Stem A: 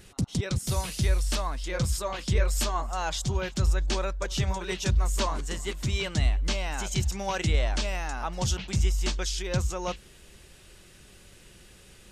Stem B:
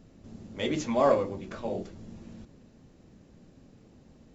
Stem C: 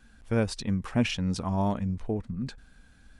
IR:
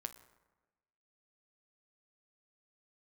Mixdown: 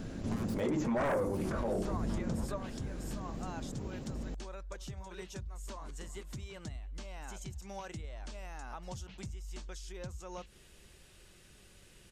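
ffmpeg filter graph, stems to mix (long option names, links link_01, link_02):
-filter_complex "[0:a]acompressor=threshold=-33dB:ratio=12,adelay=500,volume=2.5dB[link_01];[1:a]aeval=exprs='0.316*sin(PI/2*3.98*val(0)/0.316)':channel_layout=same,volume=-3dB[link_02];[2:a]acompressor=threshold=-34dB:ratio=1.5,aeval=exprs='0.0188*sin(PI/2*1.58*val(0)/0.0188)':channel_layout=same,volume=-5dB,asplit=2[link_03][link_04];[link_04]apad=whole_len=556431[link_05];[link_01][link_05]sidechaingate=range=-9dB:threshold=-45dB:ratio=16:detection=peak[link_06];[link_06][link_02][link_03]amix=inputs=3:normalize=0,acrossover=split=1800|6400[link_07][link_08][link_09];[link_07]acompressor=threshold=-23dB:ratio=4[link_10];[link_08]acompressor=threshold=-57dB:ratio=4[link_11];[link_09]acompressor=threshold=-51dB:ratio=4[link_12];[link_10][link_11][link_12]amix=inputs=3:normalize=0,alimiter=level_in=2dB:limit=-24dB:level=0:latency=1:release=108,volume=-2dB"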